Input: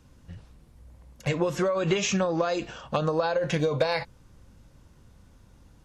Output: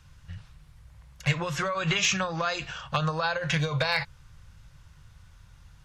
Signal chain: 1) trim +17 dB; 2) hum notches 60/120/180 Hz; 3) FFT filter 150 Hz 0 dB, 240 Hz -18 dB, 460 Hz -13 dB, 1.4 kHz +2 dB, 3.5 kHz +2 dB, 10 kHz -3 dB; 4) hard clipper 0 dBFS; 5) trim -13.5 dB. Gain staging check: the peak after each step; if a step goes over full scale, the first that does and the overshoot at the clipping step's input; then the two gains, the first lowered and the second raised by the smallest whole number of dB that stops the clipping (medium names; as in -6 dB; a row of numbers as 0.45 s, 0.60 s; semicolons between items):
+2.5 dBFS, +3.0 dBFS, +3.5 dBFS, 0.0 dBFS, -13.5 dBFS; step 1, 3.5 dB; step 1 +13 dB, step 5 -9.5 dB